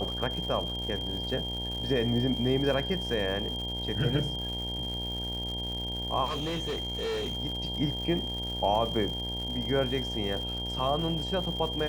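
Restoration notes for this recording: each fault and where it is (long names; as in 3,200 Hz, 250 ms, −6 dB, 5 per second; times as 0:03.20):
mains buzz 60 Hz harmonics 16 −37 dBFS
surface crackle 280 per second −37 dBFS
whistle 3,200 Hz −34 dBFS
0:06.25–0:07.37: clipping −28.5 dBFS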